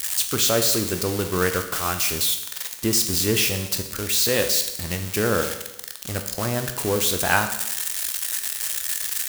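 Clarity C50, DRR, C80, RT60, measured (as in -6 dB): 9.0 dB, 6.0 dB, 11.5 dB, 0.95 s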